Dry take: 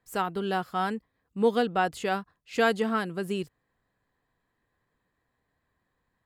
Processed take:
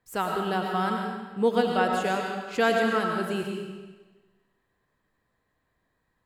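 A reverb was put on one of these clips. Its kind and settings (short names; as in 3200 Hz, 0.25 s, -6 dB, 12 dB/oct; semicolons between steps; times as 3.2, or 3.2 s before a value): digital reverb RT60 1.3 s, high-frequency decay 0.95×, pre-delay 60 ms, DRR 1 dB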